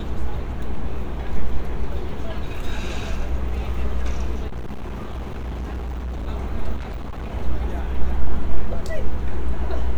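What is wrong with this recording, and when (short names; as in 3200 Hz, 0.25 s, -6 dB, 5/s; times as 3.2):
4.47–6.28 clipped -25 dBFS
6.76–7.34 clipped -26 dBFS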